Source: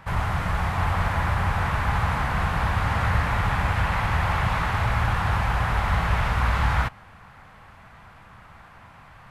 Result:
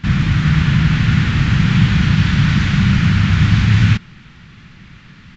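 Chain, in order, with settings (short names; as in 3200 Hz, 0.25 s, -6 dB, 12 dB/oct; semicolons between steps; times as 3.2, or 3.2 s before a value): speed mistake 45 rpm record played at 78 rpm; downsampling 16000 Hz; resonant low shelf 240 Hz +8 dB, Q 1.5; gain +2.5 dB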